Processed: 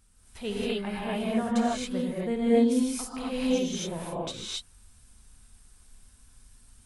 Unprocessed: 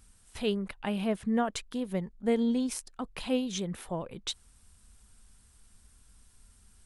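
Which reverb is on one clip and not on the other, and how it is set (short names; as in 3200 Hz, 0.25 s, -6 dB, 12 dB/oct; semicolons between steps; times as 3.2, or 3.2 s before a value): non-linear reverb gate 0.3 s rising, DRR -7.5 dB; gain -5 dB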